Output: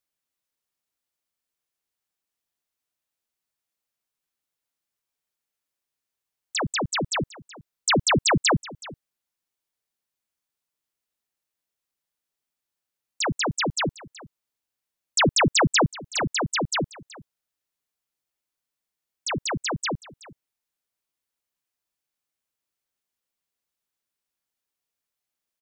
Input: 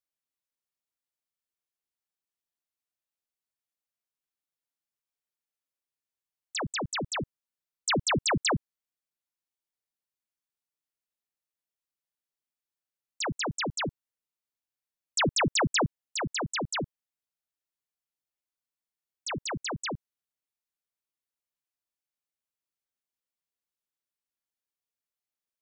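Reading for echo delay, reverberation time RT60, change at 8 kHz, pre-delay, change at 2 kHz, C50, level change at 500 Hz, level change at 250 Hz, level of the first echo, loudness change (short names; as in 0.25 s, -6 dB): 0.374 s, none, +6.0 dB, none, +6.0 dB, none, +6.0 dB, +6.0 dB, -19.5 dB, +6.0 dB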